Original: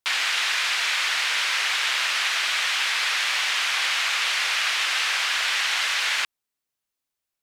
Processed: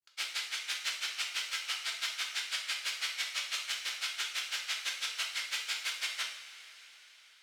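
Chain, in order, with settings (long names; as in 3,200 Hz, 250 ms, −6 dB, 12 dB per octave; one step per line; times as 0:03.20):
brickwall limiter −19 dBFS, peak gain reduction 7.5 dB
granular cloud 84 ms, grains 6 per second, spray 30 ms, pitch spread up and down by 0 semitones
formants moved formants +4 semitones
coupled-rooms reverb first 0.6 s, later 4.9 s, from −17 dB, DRR −0.5 dB
level −4.5 dB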